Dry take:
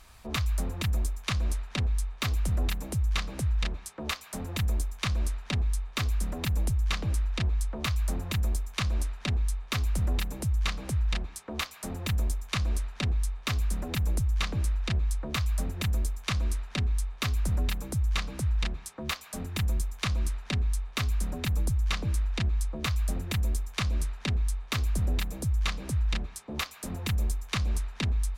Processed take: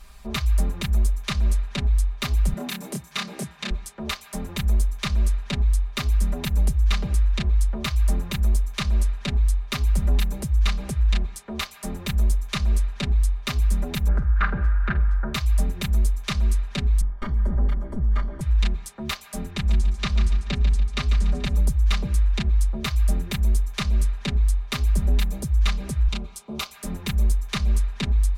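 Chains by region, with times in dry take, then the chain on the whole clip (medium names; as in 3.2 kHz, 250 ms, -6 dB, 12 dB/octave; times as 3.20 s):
2.53–3.71 s: high-pass 160 Hz 24 dB/octave + doubling 28 ms -3 dB
14.08–15.34 s: resonant low-pass 1.5 kHz, resonance Q 7.4 + flutter echo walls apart 8.2 m, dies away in 0.22 s
17.01–18.41 s: comb filter that takes the minimum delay 3.2 ms + Savitzky-Golay filter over 41 samples
19.50–21.56 s: low-pass 6.1 kHz + feedback delay 144 ms, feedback 38%, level -8.5 dB
26.08–26.71 s: high-pass 120 Hz 6 dB/octave + peaking EQ 1.8 kHz -11.5 dB 0.29 oct
whole clip: bass shelf 100 Hz +7.5 dB; comb 5 ms, depth 95%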